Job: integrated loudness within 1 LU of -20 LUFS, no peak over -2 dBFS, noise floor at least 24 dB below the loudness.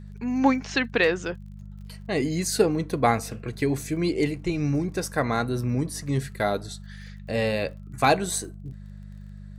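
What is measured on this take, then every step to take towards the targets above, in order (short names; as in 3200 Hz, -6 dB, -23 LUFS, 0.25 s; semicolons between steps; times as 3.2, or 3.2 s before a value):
ticks 29/s; hum 50 Hz; harmonics up to 200 Hz; hum level -39 dBFS; loudness -25.5 LUFS; peak -6.5 dBFS; loudness target -20.0 LUFS
-> de-click; de-hum 50 Hz, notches 4; gain +5.5 dB; limiter -2 dBFS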